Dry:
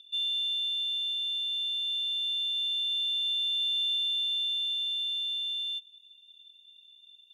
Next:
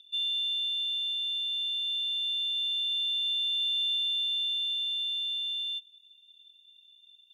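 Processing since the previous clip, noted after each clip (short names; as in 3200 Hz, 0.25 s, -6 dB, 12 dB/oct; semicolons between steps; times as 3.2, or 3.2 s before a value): HPF 1300 Hz 12 dB/oct; dynamic EQ 2900 Hz, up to +4 dB, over -41 dBFS, Q 2.4; gain -2 dB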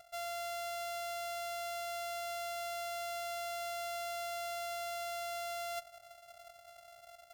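sample sorter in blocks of 64 samples; reverse; compressor 12:1, threshold -40 dBFS, peak gain reduction 13 dB; reverse; gain +1.5 dB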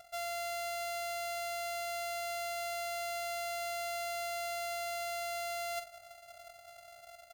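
doubler 46 ms -9 dB; gain +2.5 dB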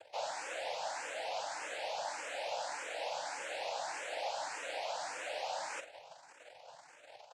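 noise vocoder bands 8; speakerphone echo 0.23 s, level -18 dB; endless phaser +1.7 Hz; gain +1.5 dB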